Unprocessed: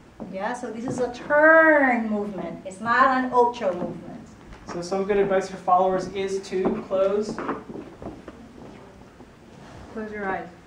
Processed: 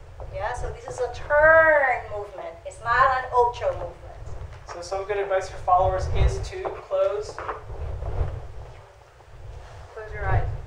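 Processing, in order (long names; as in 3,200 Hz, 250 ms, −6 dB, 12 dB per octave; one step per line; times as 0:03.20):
wind on the microphone 180 Hz −29 dBFS
Chebyshev band-stop filter 100–510 Hz, order 2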